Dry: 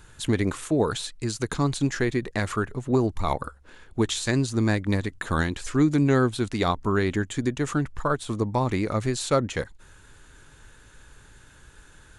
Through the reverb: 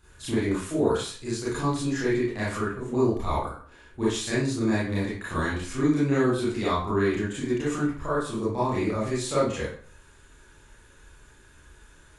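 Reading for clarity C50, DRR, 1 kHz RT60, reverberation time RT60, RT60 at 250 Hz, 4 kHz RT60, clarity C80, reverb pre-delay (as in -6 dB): 0.5 dB, -10.5 dB, 0.45 s, 0.45 s, 0.45 s, 0.40 s, 6.5 dB, 27 ms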